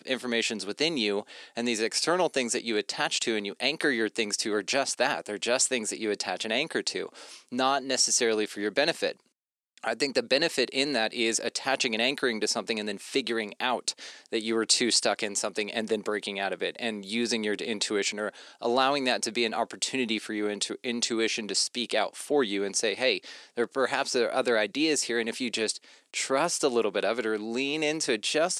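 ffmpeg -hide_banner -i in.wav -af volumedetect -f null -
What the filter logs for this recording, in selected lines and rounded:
mean_volume: -28.7 dB
max_volume: -9.1 dB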